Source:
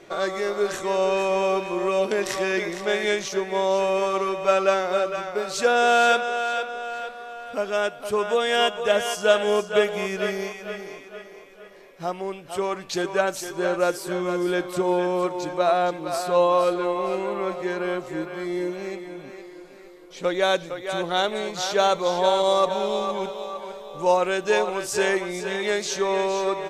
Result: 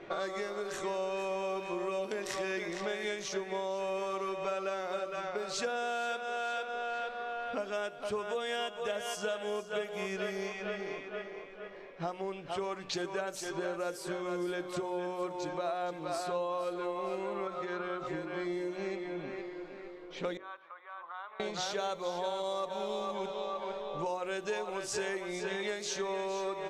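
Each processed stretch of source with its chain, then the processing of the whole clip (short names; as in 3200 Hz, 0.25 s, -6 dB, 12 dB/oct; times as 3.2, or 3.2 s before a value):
17.47–18.07 compressor 4:1, threshold -29 dBFS + small resonant body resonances 1300/3600 Hz, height 17 dB
20.37–21.4 compressor 2.5:1, threshold -32 dBFS + ladder band-pass 1200 Hz, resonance 70%
whole clip: low-pass opened by the level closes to 2700 Hz, open at -20 dBFS; compressor 6:1, threshold -33 dBFS; de-hum 45.44 Hz, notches 14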